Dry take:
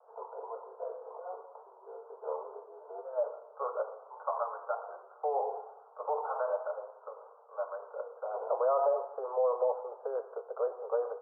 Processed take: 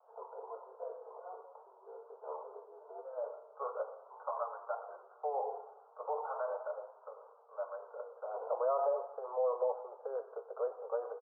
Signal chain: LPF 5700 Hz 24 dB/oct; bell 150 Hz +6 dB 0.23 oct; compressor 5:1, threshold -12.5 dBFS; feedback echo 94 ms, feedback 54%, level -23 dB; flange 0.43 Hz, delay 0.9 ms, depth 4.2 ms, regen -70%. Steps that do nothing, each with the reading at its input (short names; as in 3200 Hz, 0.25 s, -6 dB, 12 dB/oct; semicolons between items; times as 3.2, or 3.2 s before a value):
LPF 5700 Hz: input band ends at 1500 Hz; bell 150 Hz: input band starts at 360 Hz; compressor, threshold -12.5 dBFS: input peak -18.5 dBFS